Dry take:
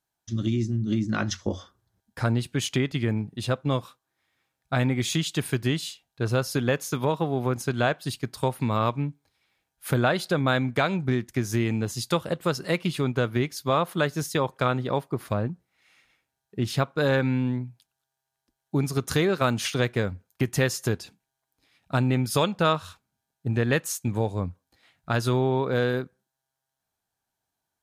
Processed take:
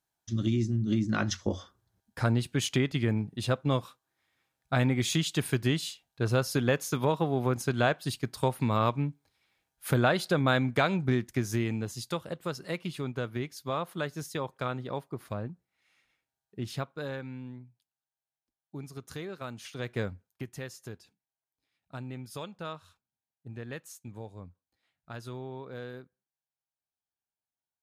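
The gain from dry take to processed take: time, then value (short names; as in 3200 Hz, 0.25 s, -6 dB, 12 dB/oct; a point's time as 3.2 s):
11.25 s -2 dB
12.19 s -9 dB
16.73 s -9 dB
17.25 s -16.5 dB
19.69 s -16.5 dB
20.02 s -5.5 dB
20.56 s -17 dB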